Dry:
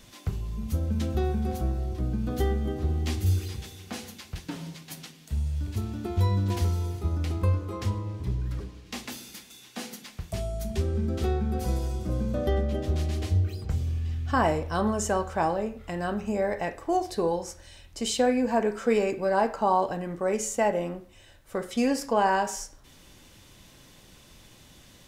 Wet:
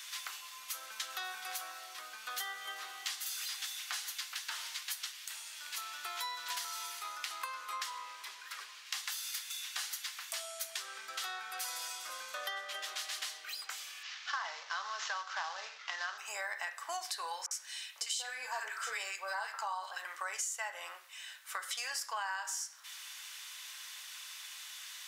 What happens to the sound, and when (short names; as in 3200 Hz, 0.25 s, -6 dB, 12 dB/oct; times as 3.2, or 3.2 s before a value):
14.03–16.18 CVSD 32 kbps
17.46–20.05 bands offset in time lows, highs 50 ms, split 1300 Hz
whole clip: HPF 1200 Hz 24 dB/oct; dynamic EQ 2400 Hz, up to -6 dB, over -55 dBFS, Q 3.6; compressor 6:1, threshold -45 dBFS; gain +9 dB